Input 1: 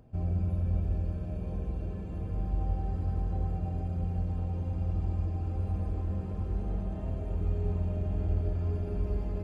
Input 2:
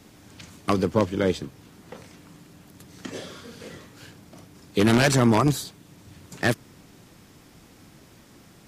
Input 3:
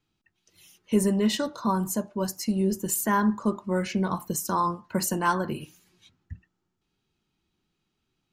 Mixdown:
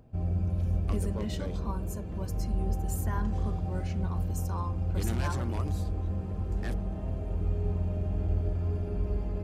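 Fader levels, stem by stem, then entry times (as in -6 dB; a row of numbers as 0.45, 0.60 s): +0.5, -19.5, -14.0 dB; 0.00, 0.20, 0.00 s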